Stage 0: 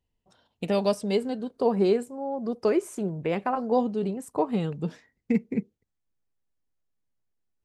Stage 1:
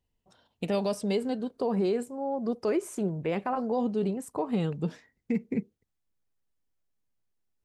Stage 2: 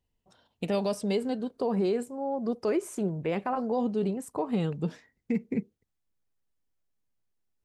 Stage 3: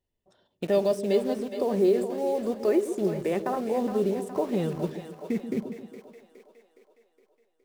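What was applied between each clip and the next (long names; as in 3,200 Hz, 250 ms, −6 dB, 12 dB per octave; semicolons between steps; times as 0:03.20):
brickwall limiter −19.5 dBFS, peak gain reduction 7.5 dB
no processing that can be heard
hollow resonant body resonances 380/580/1,800/3,500 Hz, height 9 dB, ringing for 30 ms; in parallel at −7.5 dB: bit-depth reduction 6 bits, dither none; on the sum: echo with a time of its own for lows and highs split 440 Hz, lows 132 ms, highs 415 ms, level −9 dB; level −5 dB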